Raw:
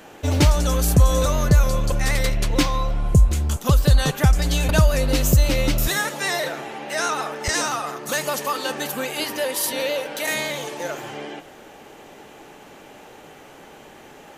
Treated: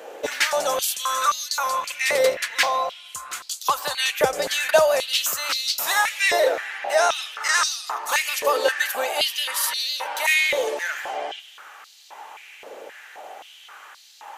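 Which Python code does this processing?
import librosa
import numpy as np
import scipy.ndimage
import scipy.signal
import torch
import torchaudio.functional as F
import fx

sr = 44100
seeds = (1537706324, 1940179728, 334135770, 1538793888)

y = fx.filter_held_highpass(x, sr, hz=3.8, low_hz=500.0, high_hz=4300.0)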